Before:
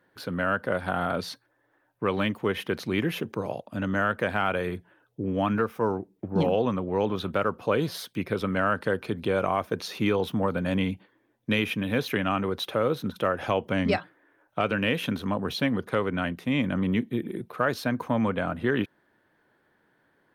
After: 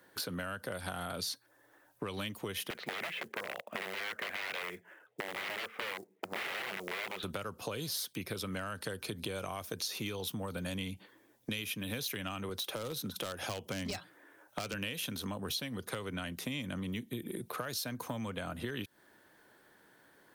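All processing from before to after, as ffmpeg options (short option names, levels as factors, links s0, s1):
-filter_complex "[0:a]asettb=1/sr,asplit=3[s0][s1][s2];[s0]atrim=end=2.704[s3];[s1]atrim=start=2.7:end=7.23,asetpts=PTS-STARTPTS,afade=t=in:d=0.004:c=qsin,afade=t=out:st=4.526:d=0.004:c=qsin,aeval=exprs='(mod(14.1*val(0)+1,2)-1)/14.1':c=same,highpass=270,equalizer=f=280:t=q:w=4:g=-9,equalizer=f=900:t=q:w=4:g=-3,equalizer=f=2000:t=q:w=4:g=7,lowpass=f=2800:w=0.5412,lowpass=f=2800:w=1.3066,acrusher=bits=8:mode=log:mix=0:aa=0.000001[s4];[s2]atrim=start=7.226[s5];[s3][s4]acrossfade=d=0.004:c1=hsin:c2=qsin[s6];[s6][s5]acrossfade=d=0.004:c1=qsin:c2=hsin,asettb=1/sr,asplit=3[s7][s8][s9];[s7]atrim=end=12.494[s10];[s8]atrim=start=12.49:end=14.74,asetpts=PTS-STARTPTS,afade=t=in:d=0.004:c=qsin,afade=t=out:st=2.246:d=0.004:c=qsin,highpass=f=81:w=0.5412,highpass=f=81:w=1.3066,deesser=0.85,asoftclip=type=hard:threshold=0.112[s11];[s9]atrim=start=14.736[s12];[s10][s11]acrossfade=d=0.004:c1=hsin:c2=qsin[s13];[s13][s12]acrossfade=d=0.004:c1=qsin:c2=hsin,acrossover=split=140|3000[s14][s15][s16];[s15]acompressor=threshold=0.0178:ratio=4[s17];[s14][s17][s16]amix=inputs=3:normalize=0,bass=f=250:g=-4,treble=f=4000:g=12,acompressor=threshold=0.01:ratio=4,volume=1.5"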